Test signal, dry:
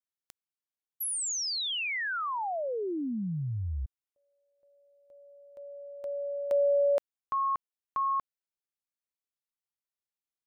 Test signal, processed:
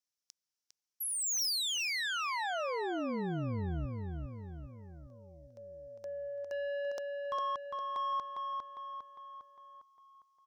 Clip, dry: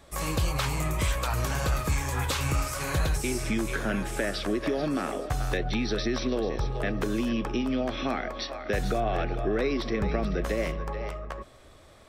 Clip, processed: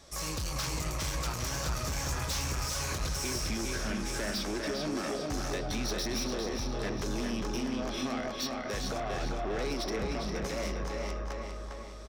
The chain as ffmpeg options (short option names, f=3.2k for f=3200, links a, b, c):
-filter_complex "[0:a]equalizer=f=5.6k:t=o:w=0.69:g=14.5,asoftclip=type=tanh:threshold=-28.5dB,asplit=2[a][b];[b]adelay=404,lowpass=f=4.7k:p=1,volume=-3.5dB,asplit=2[c][d];[d]adelay=404,lowpass=f=4.7k:p=1,volume=0.54,asplit=2[e][f];[f]adelay=404,lowpass=f=4.7k:p=1,volume=0.54,asplit=2[g][h];[h]adelay=404,lowpass=f=4.7k:p=1,volume=0.54,asplit=2[i][j];[j]adelay=404,lowpass=f=4.7k:p=1,volume=0.54,asplit=2[k][l];[l]adelay=404,lowpass=f=4.7k:p=1,volume=0.54,asplit=2[m][n];[n]adelay=404,lowpass=f=4.7k:p=1,volume=0.54[o];[c][e][g][i][k][m][o]amix=inputs=7:normalize=0[p];[a][p]amix=inputs=2:normalize=0,volume=-3dB"